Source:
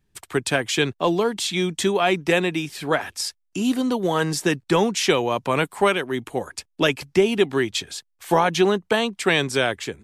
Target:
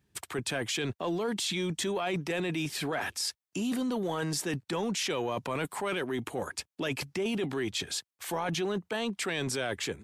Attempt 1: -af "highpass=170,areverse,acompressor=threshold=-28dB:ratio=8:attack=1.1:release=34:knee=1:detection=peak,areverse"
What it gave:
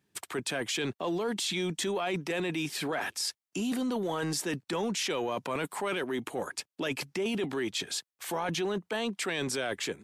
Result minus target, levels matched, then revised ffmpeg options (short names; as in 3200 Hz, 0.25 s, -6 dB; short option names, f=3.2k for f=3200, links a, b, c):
125 Hz band -3.0 dB
-af "highpass=66,areverse,acompressor=threshold=-28dB:ratio=8:attack=1.1:release=34:knee=1:detection=peak,areverse"